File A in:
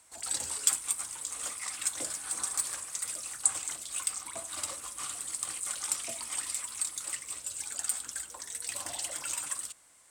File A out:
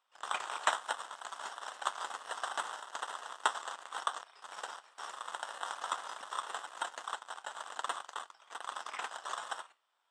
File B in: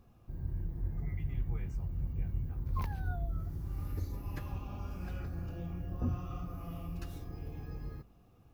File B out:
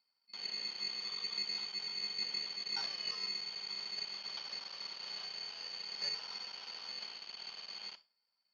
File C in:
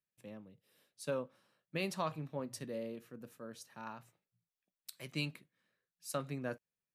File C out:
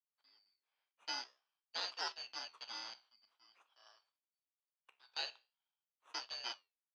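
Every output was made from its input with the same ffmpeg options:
-filter_complex "[0:a]afftfilt=real='real(if(lt(b,272),68*(eq(floor(b/68),0)*3+eq(floor(b/68),1)*2+eq(floor(b/68),2)*1+eq(floor(b/68),3)*0)+mod(b,68),b),0)':imag='imag(if(lt(b,272),68*(eq(floor(b/68),0)*3+eq(floor(b/68),1)*2+eq(floor(b/68),2)*1+eq(floor(b/68),3)*0)+mod(b,68),b),0)':win_size=2048:overlap=0.75,afwtdn=0.00794,flanger=delay=9.9:depth=6.7:regen=74:speed=0.47:shape=sinusoidal,asplit=2[link_01][link_02];[link_02]acrusher=samples=19:mix=1:aa=0.000001,volume=-3dB[link_03];[link_01][link_03]amix=inputs=2:normalize=0,asuperpass=centerf=1700:order=4:qfactor=0.65,volume=7dB"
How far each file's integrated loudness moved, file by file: −7.0, +1.0, −1.5 LU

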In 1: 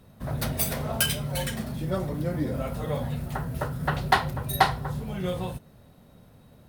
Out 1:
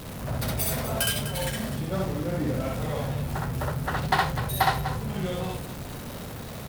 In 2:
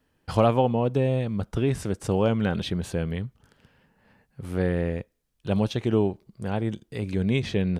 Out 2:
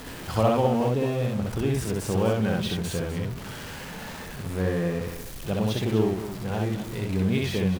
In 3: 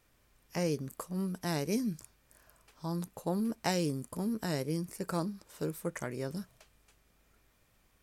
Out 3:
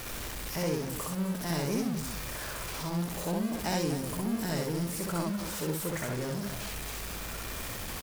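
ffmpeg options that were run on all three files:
-af "aeval=exprs='val(0)+0.5*0.0316*sgn(val(0))':channel_layout=same,aecho=1:1:64.14|250.7:0.891|0.282,volume=-4.5dB"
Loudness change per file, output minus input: 0.0, −1.0, +2.5 LU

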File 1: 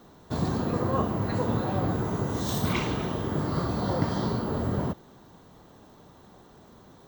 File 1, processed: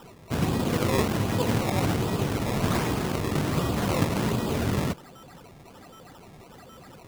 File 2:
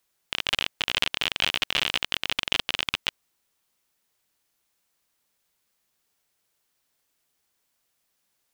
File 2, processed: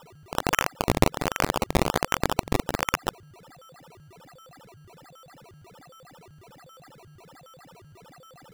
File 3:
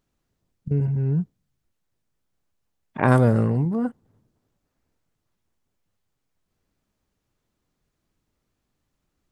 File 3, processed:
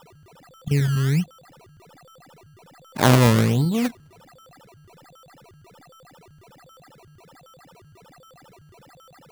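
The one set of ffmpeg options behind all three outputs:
-af "aeval=exprs='val(0)+0.00316*sin(2*PI*7500*n/s)':channel_layout=same,acrusher=samples=20:mix=1:aa=0.000001:lfo=1:lforange=20:lforate=1.3,volume=2dB"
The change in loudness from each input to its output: +2.0, −0.5, +2.0 LU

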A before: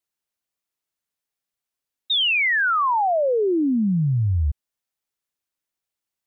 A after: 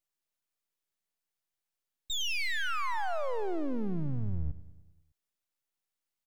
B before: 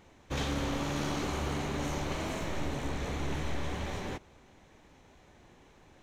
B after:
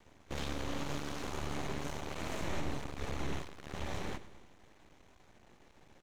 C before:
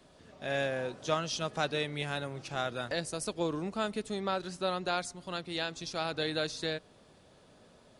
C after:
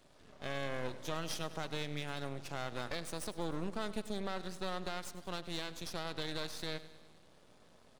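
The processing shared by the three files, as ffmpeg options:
-af "alimiter=level_in=1.5dB:limit=-24dB:level=0:latency=1:release=116,volume=-1.5dB,aeval=exprs='max(val(0),0)':channel_layout=same,aecho=1:1:101|202|303|404|505|606:0.158|0.0935|0.0552|0.0326|0.0192|0.0113"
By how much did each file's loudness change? −13.5, −5.5, −6.5 LU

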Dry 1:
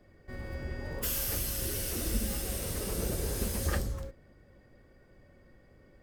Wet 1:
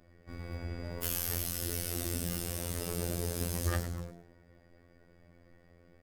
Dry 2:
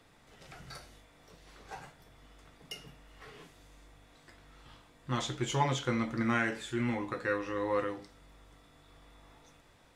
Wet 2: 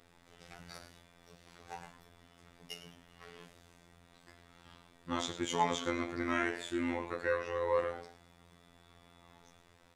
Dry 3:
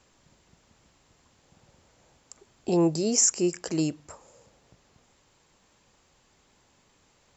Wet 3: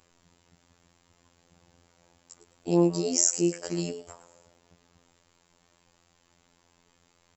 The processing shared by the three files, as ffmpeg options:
-filter_complex "[0:a]asplit=4[link_01][link_02][link_03][link_04];[link_02]adelay=105,afreqshift=130,volume=-13dB[link_05];[link_03]adelay=210,afreqshift=260,volume=-23.2dB[link_06];[link_04]adelay=315,afreqshift=390,volume=-33.3dB[link_07];[link_01][link_05][link_06][link_07]amix=inputs=4:normalize=0,afftfilt=real='hypot(re,im)*cos(PI*b)':imag='0':win_size=2048:overlap=0.75,volume=1.5dB"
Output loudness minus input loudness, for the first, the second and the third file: −1.5, −2.5, −1.5 LU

